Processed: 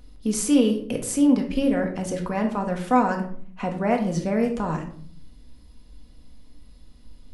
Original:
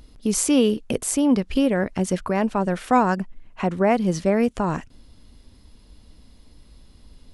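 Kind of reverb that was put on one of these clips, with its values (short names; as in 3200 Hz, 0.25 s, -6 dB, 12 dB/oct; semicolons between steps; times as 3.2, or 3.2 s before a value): shoebox room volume 690 m³, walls furnished, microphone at 1.9 m; gain -5.5 dB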